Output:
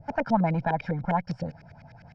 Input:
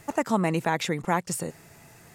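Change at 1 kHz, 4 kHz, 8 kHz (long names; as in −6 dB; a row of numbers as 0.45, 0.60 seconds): +0.5 dB, −13.5 dB, below −25 dB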